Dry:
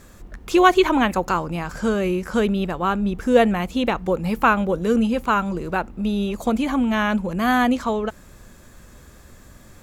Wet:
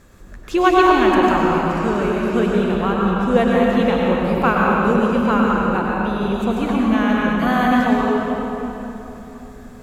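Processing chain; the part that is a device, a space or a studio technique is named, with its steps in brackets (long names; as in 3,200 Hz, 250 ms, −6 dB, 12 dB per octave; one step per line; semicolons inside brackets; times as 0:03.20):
swimming-pool hall (convolution reverb RT60 3.6 s, pre-delay 91 ms, DRR −4 dB; high-shelf EQ 4,900 Hz −6 dB)
level −2 dB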